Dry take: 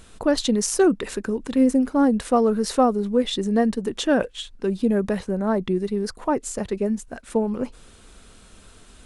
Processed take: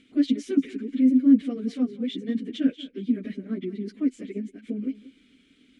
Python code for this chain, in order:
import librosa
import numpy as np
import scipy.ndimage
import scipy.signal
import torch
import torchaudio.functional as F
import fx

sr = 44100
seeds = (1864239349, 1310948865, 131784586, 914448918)

y = fx.stretch_vocoder_free(x, sr, factor=0.64)
y = fx.vowel_filter(y, sr, vowel='i')
y = y + 10.0 ** (-18.0 / 20.0) * np.pad(y, (int(186 * sr / 1000.0), 0))[:len(y)]
y = y * 10.0 ** (8.5 / 20.0)